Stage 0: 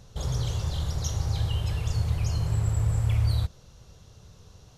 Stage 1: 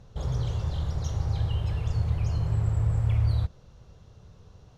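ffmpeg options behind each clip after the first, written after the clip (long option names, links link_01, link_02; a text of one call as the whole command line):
ffmpeg -i in.wav -af "lowpass=frequency=1800:poles=1" out.wav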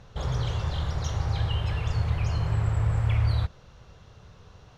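ffmpeg -i in.wav -af "equalizer=frequency=1900:width_type=o:width=2.8:gain=9.5" out.wav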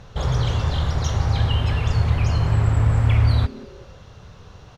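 ffmpeg -i in.wav -filter_complex "[0:a]asplit=4[link_01][link_02][link_03][link_04];[link_02]adelay=182,afreqshift=150,volume=-22dB[link_05];[link_03]adelay=364,afreqshift=300,volume=-29.1dB[link_06];[link_04]adelay=546,afreqshift=450,volume=-36.3dB[link_07];[link_01][link_05][link_06][link_07]amix=inputs=4:normalize=0,volume=7dB" out.wav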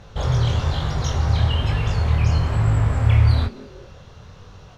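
ffmpeg -i in.wav -af "flanger=delay=20:depth=5.5:speed=1.1,volume=3.5dB" out.wav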